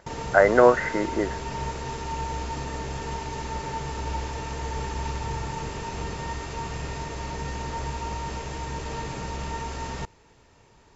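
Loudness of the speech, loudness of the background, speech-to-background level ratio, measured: −21.0 LKFS, −33.0 LKFS, 12.0 dB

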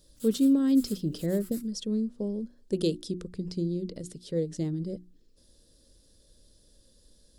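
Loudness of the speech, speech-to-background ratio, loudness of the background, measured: −29.5 LKFS, 18.0 dB, −47.5 LKFS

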